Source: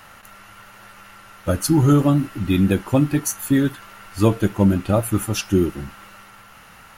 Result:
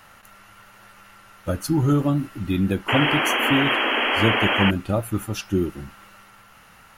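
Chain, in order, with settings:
dynamic equaliser 8,900 Hz, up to −5 dB, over −42 dBFS, Q 0.75
sound drawn into the spectrogram noise, 0:02.88–0:04.71, 220–3,300 Hz −17 dBFS
level −4.5 dB

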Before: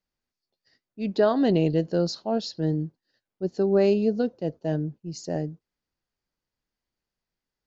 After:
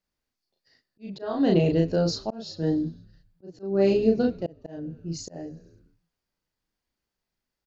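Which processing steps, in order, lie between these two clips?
double-tracking delay 36 ms −2 dB
echo with shifted repeats 100 ms, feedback 64%, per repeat −66 Hz, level −23 dB
volume swells 377 ms

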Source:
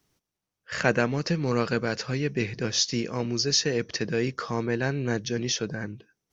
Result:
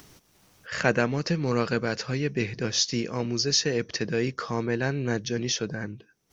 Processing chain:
upward compression, threshold −37 dBFS

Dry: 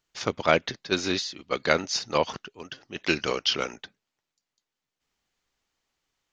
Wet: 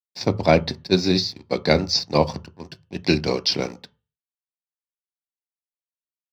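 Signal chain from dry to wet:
high-shelf EQ 7,500 Hz +6 dB
dead-zone distortion −42.5 dBFS
convolution reverb RT60 0.35 s, pre-delay 3 ms, DRR 10.5 dB
level −3 dB

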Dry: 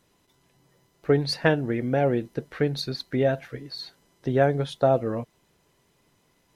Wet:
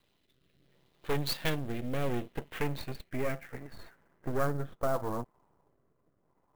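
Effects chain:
half-wave rectification
rotating-speaker cabinet horn 0.7 Hz
soft clipping −21.5 dBFS, distortion −13 dB
low-pass filter sweep 3,700 Hz → 1,000 Hz, 0:01.85–0:05.32
converter with an unsteady clock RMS 0.021 ms

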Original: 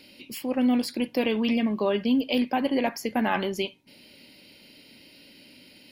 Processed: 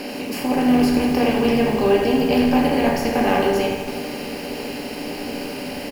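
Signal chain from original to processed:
compressor on every frequency bin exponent 0.4
parametric band 3,400 Hz −9.5 dB 0.24 octaves
echo with shifted repeats 104 ms, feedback 52%, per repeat −89 Hz, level −14 dB
rectangular room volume 41 cubic metres, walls mixed, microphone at 0.42 metres
feedback echo at a low word length 81 ms, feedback 80%, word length 6 bits, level −8.5 dB
level −1.5 dB

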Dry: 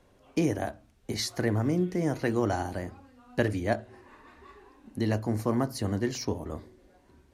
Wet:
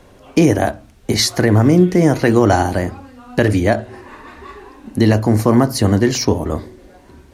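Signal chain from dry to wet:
boost into a limiter +17 dB
level −1 dB

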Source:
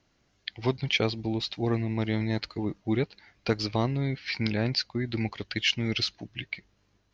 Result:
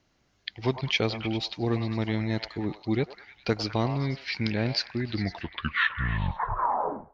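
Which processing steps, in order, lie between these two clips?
turntable brake at the end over 2.09 s
echo through a band-pass that steps 101 ms, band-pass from 830 Hz, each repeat 0.7 octaves, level −5 dB

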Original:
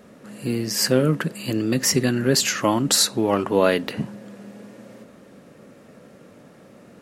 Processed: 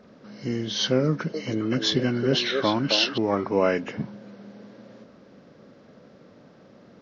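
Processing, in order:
hearing-aid frequency compression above 1,300 Hz 1.5 to 1
0:01.07–0:03.18: echo through a band-pass that steps 267 ms, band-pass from 500 Hz, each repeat 1.4 octaves, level −1 dB
level −3.5 dB

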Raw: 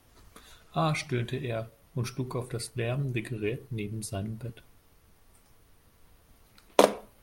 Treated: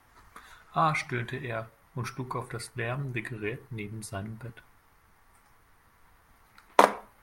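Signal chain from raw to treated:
flat-topped bell 1,300 Hz +10.5 dB
level −3.5 dB

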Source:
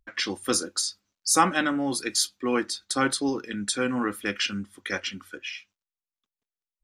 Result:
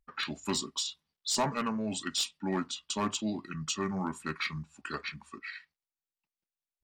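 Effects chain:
hard clipping −16.5 dBFS, distortion −15 dB
pitch shifter −4.5 semitones
level −6.5 dB

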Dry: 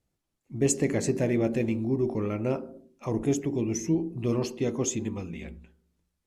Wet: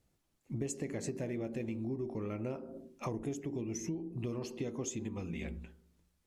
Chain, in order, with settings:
downward compressor 8 to 1, threshold −39 dBFS, peak gain reduction 19.5 dB
level +3.5 dB

